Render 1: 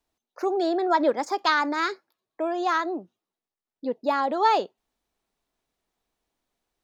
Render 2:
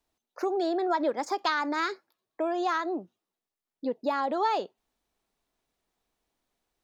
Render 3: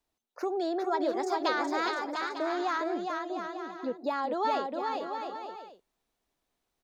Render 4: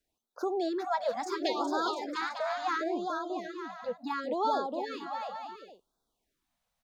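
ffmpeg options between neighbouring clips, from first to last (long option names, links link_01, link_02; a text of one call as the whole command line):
ffmpeg -i in.wav -af "acompressor=threshold=-26dB:ratio=2.5" out.wav
ffmpeg -i in.wav -af "aecho=1:1:410|697|897.9|1039|1137:0.631|0.398|0.251|0.158|0.1,volume=-3dB" out.wav
ffmpeg -i in.wav -af "afftfilt=real='re*(1-between(b*sr/1024,320*pow(2400/320,0.5+0.5*sin(2*PI*0.71*pts/sr))/1.41,320*pow(2400/320,0.5+0.5*sin(2*PI*0.71*pts/sr))*1.41))':imag='im*(1-between(b*sr/1024,320*pow(2400/320,0.5+0.5*sin(2*PI*0.71*pts/sr))/1.41,320*pow(2400/320,0.5+0.5*sin(2*PI*0.71*pts/sr))*1.41))':win_size=1024:overlap=0.75" out.wav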